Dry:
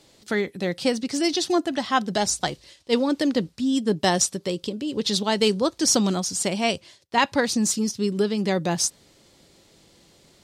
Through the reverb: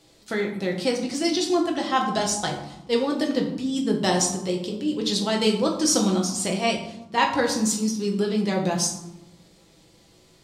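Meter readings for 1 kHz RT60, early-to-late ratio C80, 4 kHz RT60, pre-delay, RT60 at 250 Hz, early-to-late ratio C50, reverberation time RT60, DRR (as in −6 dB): 0.95 s, 10.0 dB, 0.50 s, 6 ms, 1.3 s, 6.5 dB, 0.95 s, 0.0 dB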